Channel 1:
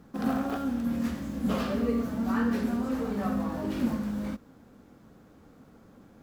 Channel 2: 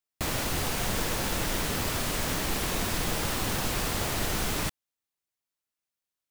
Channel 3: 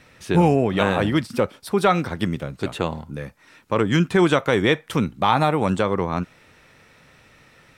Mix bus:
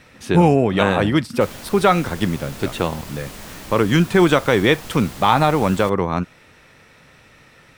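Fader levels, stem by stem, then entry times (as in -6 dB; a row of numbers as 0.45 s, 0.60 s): -18.0 dB, -7.0 dB, +3.0 dB; 0.00 s, 1.20 s, 0.00 s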